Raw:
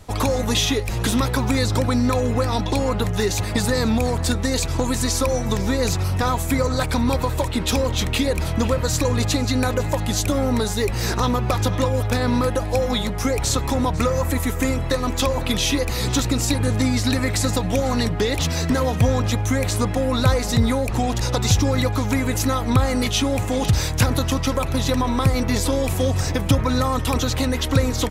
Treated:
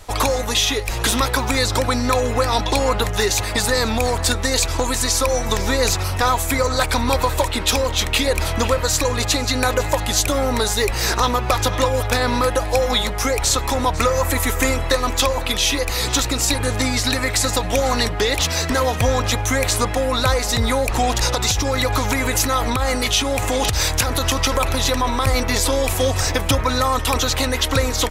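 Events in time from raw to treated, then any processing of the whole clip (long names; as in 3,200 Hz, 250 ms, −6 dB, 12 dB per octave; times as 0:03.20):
0:21.30–0:25.27: downward compressor, threshold −19 dBFS
whole clip: parametric band 160 Hz −13.5 dB 2.2 octaves; speech leveller 0.5 s; level +6.5 dB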